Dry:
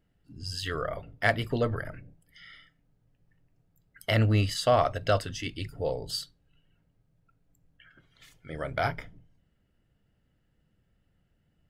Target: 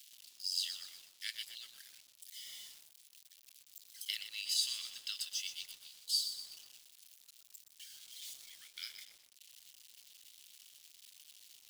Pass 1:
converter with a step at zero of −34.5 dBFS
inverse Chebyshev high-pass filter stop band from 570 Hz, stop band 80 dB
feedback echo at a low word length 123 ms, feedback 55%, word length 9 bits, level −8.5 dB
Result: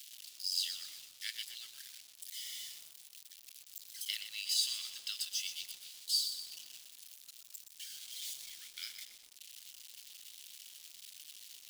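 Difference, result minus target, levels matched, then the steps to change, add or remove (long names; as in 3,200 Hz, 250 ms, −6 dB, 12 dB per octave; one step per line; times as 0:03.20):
converter with a step at zero: distortion +5 dB
change: converter with a step at zero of −40.5 dBFS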